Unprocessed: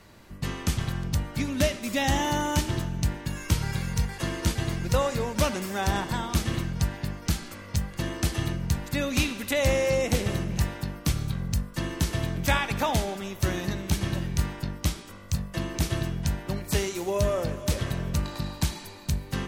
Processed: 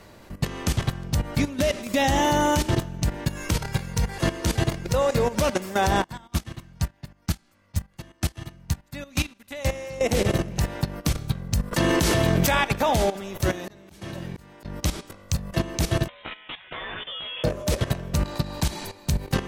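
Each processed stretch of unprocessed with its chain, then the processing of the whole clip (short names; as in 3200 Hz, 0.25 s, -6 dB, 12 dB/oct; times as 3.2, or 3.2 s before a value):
6.04–10.01 bell 450 Hz -8 dB 0.78 oct + upward expander 2.5:1, over -36 dBFS
11.71–12.55 low shelf 100 Hz -8 dB + fast leveller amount 70%
13.49–14.65 HPF 130 Hz 6 dB/oct + auto swell 0.429 s
16.08–17.44 HPF 1000 Hz + doubler 15 ms -3 dB + inverted band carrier 3900 Hz
whole clip: bell 560 Hz +5 dB 1.3 oct; level quantiser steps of 14 dB; gain +7.5 dB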